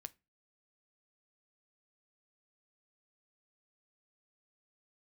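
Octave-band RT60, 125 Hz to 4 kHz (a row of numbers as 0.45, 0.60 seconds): 0.40, 0.35, 0.30, 0.25, 0.25, 0.20 seconds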